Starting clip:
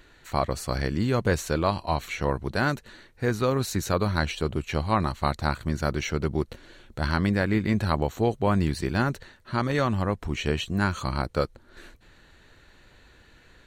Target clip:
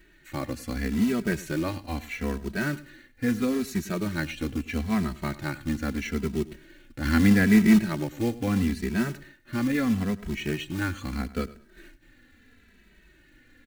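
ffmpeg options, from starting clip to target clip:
-filter_complex "[0:a]equalizer=f=125:t=o:w=1:g=-6,equalizer=f=250:t=o:w=1:g=10,equalizer=f=500:t=o:w=1:g=-5,equalizer=f=1k:t=o:w=1:g=-10,equalizer=f=2k:t=o:w=1:g=6,equalizer=f=4k:t=o:w=1:g=-5,equalizer=f=8k:t=o:w=1:g=-4,asettb=1/sr,asplit=3[a][b][c];[a]atrim=end=7.054[d];[b]atrim=start=7.05:end=7.79,asetpts=PTS-STARTPTS,afade=t=in:d=0.004:c=qsin,afade=t=out:st=0.736:d=0.004:c=qsin,acontrast=34[e];[c]atrim=start=7.786[f];[d][e]acrossfade=d=0.004:c1=hsin:c2=qsin[g];[g][f]acrossfade=d=0.004:c1=qsin:c2=hsin,acrusher=bits=4:mode=log:mix=0:aa=0.000001,aecho=1:1:102|204:0.126|0.0315,asplit=2[h][i];[i]adelay=2.7,afreqshift=-0.77[j];[h][j]amix=inputs=2:normalize=1"

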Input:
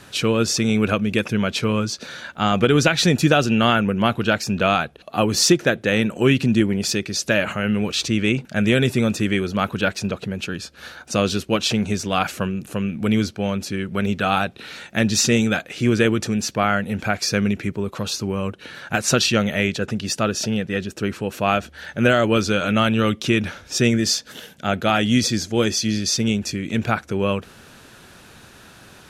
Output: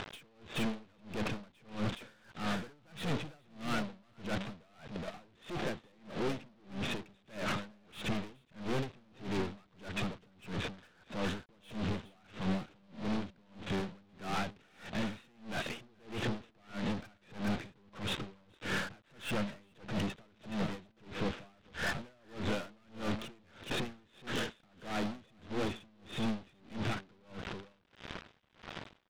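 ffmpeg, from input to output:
-filter_complex "[0:a]highpass=f=330:p=1,agate=range=-8dB:threshold=-41dB:ratio=16:detection=peak,aemphasis=mode=reproduction:type=riaa,acompressor=threshold=-36dB:ratio=2,alimiter=level_in=2dB:limit=-24dB:level=0:latency=1:release=97,volume=-2dB,acompressor=mode=upward:threshold=-51dB:ratio=2.5,aresample=8000,acrusher=bits=7:mix=0:aa=0.000001,aresample=44100,aeval=exprs='(tanh(224*val(0)+0.3)-tanh(0.3))/224':c=same,asplit=2[a][b];[b]aecho=0:1:421:0.422[c];[a][c]amix=inputs=2:normalize=0,aeval=exprs='val(0)*pow(10,-33*(0.5-0.5*cos(2*PI*1.6*n/s))/20)':c=same,volume=15.5dB"

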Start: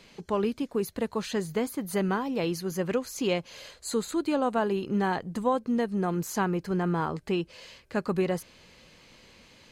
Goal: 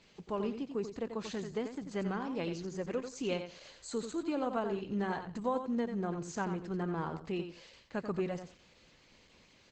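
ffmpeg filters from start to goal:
-filter_complex "[0:a]aecho=1:1:89|178|267:0.398|0.0717|0.0129,asettb=1/sr,asplit=3[a][b][c];[a]atrim=end=2.634[d];[b]atrim=start=2.63:end=3.88,asetpts=PTS-STARTPTS,afade=t=in:d=0.004:c=qsin,afade=t=out:st=1.246:d=0.004:c=qsin,acompressor=mode=upward:threshold=-40dB:ratio=2.5[e];[c]atrim=start=3.876[f];[d][e]acrossfade=d=0.004:c1=hsin:c2=qsin[g];[g][f]acrossfade=d=0.004:c1=qsin:c2=hsin,volume=-7.5dB" -ar 48000 -c:a libopus -b:a 12k

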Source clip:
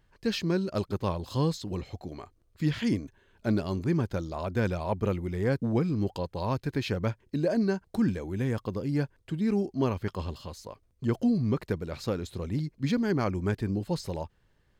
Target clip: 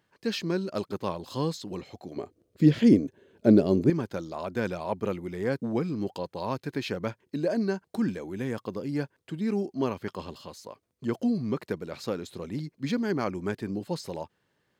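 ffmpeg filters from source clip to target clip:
-filter_complex "[0:a]highpass=180,asettb=1/sr,asplit=3[a][b][c];[a]atrim=end=2.164[d];[b]atrim=start=2.16:end=3.9,asetpts=PTS-STARTPTS,afade=t=in:d=0.004:c=qsin,afade=t=out:st=1.736:d=0.004:c=qsin,lowshelf=f=700:t=q:w=1.5:g=9.5[e];[c]atrim=start=3.896[f];[d][e]acrossfade=d=0.004:c1=hsin:c2=qsin[g];[g][f]acrossfade=d=0.004:c1=qsin:c2=hsin"

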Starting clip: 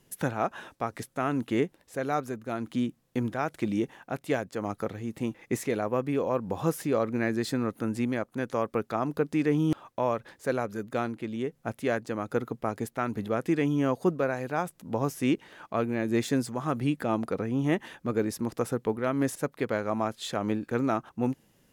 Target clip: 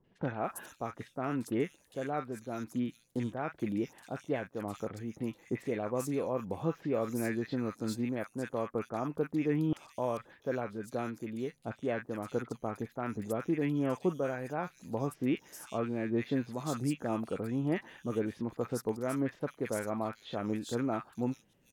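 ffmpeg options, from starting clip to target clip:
-filter_complex "[0:a]acrossover=split=1200|3600[a][b][c];[b]adelay=40[d];[c]adelay=440[e];[a][d][e]amix=inputs=3:normalize=0,volume=-5dB"

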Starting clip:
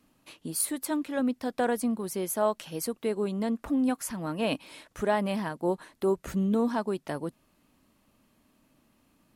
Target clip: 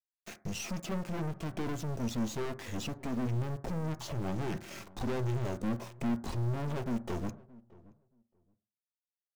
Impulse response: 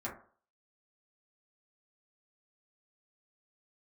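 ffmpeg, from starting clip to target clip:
-filter_complex "[0:a]acrossover=split=4800[a][b];[b]acompressor=threshold=-51dB:ratio=4:attack=1:release=60[c];[a][c]amix=inputs=2:normalize=0,equalizer=f=2.4k:w=1.8:g=-9,acompressor=threshold=-30dB:ratio=2,asetrate=26990,aresample=44100,atempo=1.63392,aeval=exprs='(tanh(126*val(0)+0.55)-tanh(0.55))/126':c=same,aeval=exprs='val(0)*gte(abs(val(0)),0.00178)':c=same,asplit=2[d][e];[e]adelay=624,lowpass=f=970:p=1,volume=-21dB,asplit=2[f][g];[g]adelay=624,lowpass=f=970:p=1,volume=0.17[h];[d][f][h]amix=inputs=3:normalize=0,asplit=2[i][j];[1:a]atrim=start_sample=2205[k];[j][k]afir=irnorm=-1:irlink=0,volume=-9dB[l];[i][l]amix=inputs=2:normalize=0,volume=7.5dB"

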